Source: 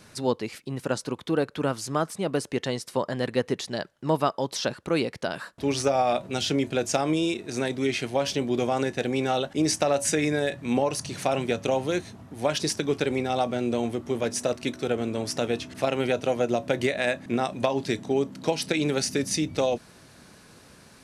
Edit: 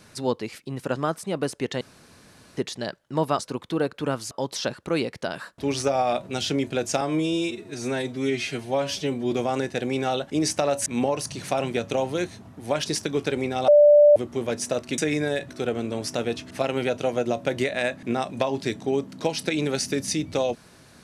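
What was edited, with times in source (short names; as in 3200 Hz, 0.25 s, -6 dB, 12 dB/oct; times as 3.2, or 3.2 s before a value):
0.96–1.88 move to 4.31
2.73–3.49 room tone
7.01–8.55 stretch 1.5×
10.09–10.6 move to 14.72
13.42–13.9 bleep 589 Hz -10 dBFS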